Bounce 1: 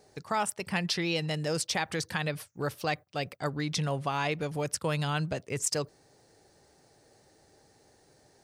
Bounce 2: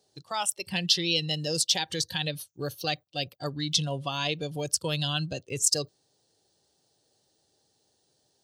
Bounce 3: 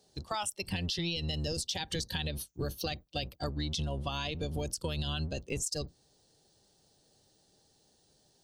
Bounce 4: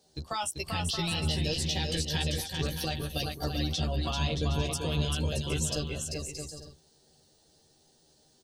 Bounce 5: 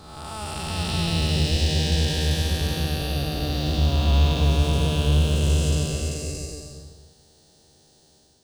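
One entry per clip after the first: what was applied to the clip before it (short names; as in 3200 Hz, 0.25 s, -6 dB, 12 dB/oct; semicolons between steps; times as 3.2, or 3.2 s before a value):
spectral noise reduction 12 dB; HPF 71 Hz; resonant high shelf 2600 Hz +6 dB, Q 3
octaver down 1 oct, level +2 dB; limiter -18 dBFS, peak gain reduction 9 dB; compressor, threshold -34 dBFS, peak gain reduction 9.5 dB; gain +2.5 dB
doubler 13 ms -3.5 dB; on a send: bouncing-ball echo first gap 0.39 s, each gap 0.6×, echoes 5
time blur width 0.448 s; modulation noise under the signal 28 dB; on a send at -12 dB: reverb RT60 0.10 s, pre-delay 0.14 s; on the sum: gain +8.5 dB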